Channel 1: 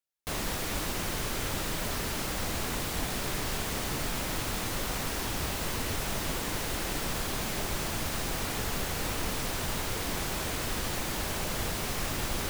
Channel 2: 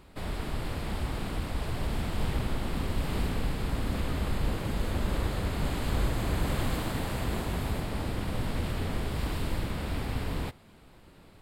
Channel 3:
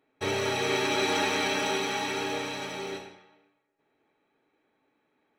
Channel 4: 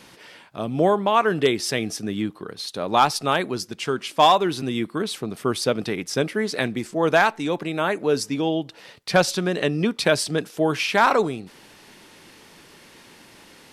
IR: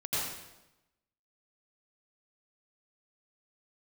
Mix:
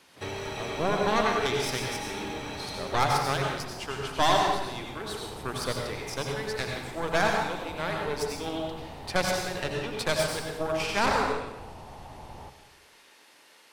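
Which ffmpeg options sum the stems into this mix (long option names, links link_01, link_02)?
-filter_complex "[0:a]lowpass=frequency=860:width_type=q:width=4.4,volume=-16dB,asplit=2[link_01][link_02];[link_02]volume=-15dB[link_03];[1:a]highpass=190,asoftclip=type=tanh:threshold=-36dB,volume=-12.5dB,asplit=2[link_04][link_05];[link_05]volume=-7.5dB[link_06];[2:a]acompressor=threshold=-29dB:ratio=6,volume=-4dB[link_07];[3:a]highpass=510,aeval=exprs='0.631*(cos(1*acos(clip(val(0)/0.631,-1,1)))-cos(1*PI/2))+0.126*(cos(6*acos(clip(val(0)/0.631,-1,1)))-cos(6*PI/2))':channel_layout=same,volume=-12dB,asplit=2[link_08][link_09];[link_09]volume=-4dB[link_10];[4:a]atrim=start_sample=2205[link_11];[link_03][link_06][link_10]amix=inputs=3:normalize=0[link_12];[link_12][link_11]afir=irnorm=-1:irlink=0[link_13];[link_01][link_04][link_07][link_08][link_13]amix=inputs=5:normalize=0,equalizer=frequency=88:width_type=o:width=1.4:gain=6"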